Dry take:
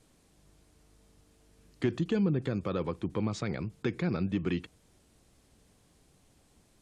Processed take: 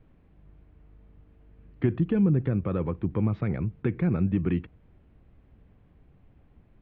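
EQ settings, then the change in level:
low-pass filter 2,600 Hz 24 dB per octave
high-frequency loss of the air 67 metres
low-shelf EQ 190 Hz +12 dB
0.0 dB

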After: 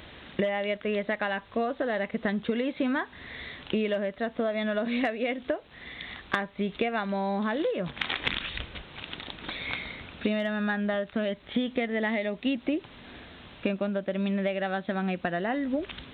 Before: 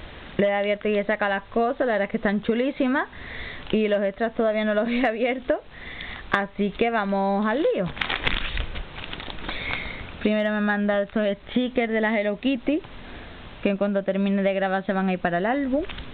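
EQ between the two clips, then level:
high-pass filter 55 Hz
parametric band 260 Hz +3 dB 1.1 octaves
high-shelf EQ 3,000 Hz +8 dB
−7.5 dB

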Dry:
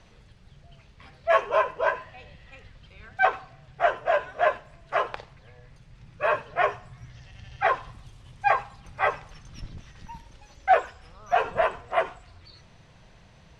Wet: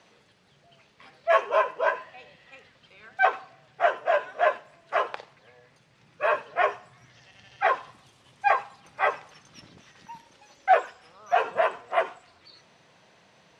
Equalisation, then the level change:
high-pass filter 260 Hz 12 dB per octave
0.0 dB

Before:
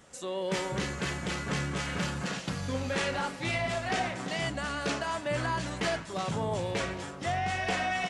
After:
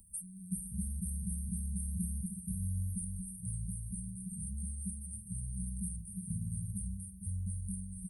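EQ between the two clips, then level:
linear-phase brick-wall band-stop 200–8,500 Hz
high-shelf EQ 6,400 Hz +6 dB
phaser with its sweep stopped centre 520 Hz, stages 6
+8.0 dB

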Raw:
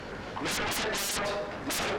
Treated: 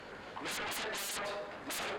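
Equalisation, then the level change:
low-shelf EQ 250 Hz −9.5 dB
parametric band 5,600 Hz −6.5 dB 0.27 octaves
−6.5 dB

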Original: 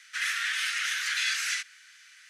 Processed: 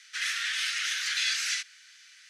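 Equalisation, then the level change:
parametric band 4,600 Hz +8.5 dB 1.9 octaves
−5.5 dB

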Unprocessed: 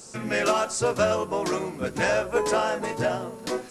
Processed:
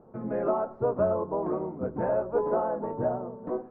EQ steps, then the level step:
low-pass filter 1,000 Hz 24 dB per octave
mains-hum notches 60/120 Hz
−2.0 dB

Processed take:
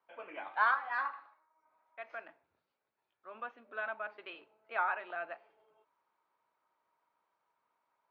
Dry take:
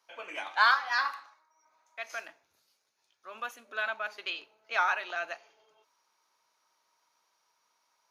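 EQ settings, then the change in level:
dynamic equaliser 5,600 Hz, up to −5 dB, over −48 dBFS, Q 0.93
high-frequency loss of the air 280 metres
head-to-tape spacing loss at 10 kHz 27 dB
0.0 dB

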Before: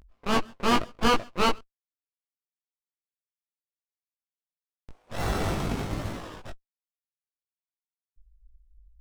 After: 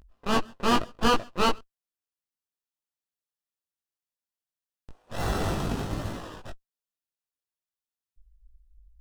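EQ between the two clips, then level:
notch filter 2,200 Hz, Q 6.9
0.0 dB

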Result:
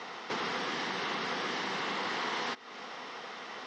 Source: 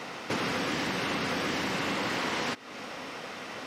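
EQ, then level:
loudspeaker in its box 280–5,500 Hz, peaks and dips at 290 Hz −9 dB, 570 Hz −9 dB, 1,500 Hz −3 dB, 2,500 Hz −7 dB, 4,600 Hz −3 dB
0.0 dB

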